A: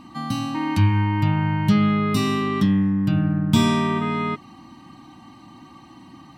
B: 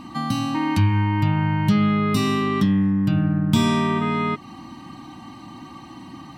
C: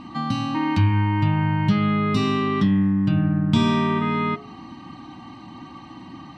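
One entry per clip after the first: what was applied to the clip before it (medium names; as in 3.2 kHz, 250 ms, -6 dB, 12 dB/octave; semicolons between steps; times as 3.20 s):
compression 1.5:1, threshold -31 dBFS, peak gain reduction 7 dB; trim +5.5 dB
low-pass 4.6 kHz 12 dB/octave; de-hum 69.88 Hz, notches 34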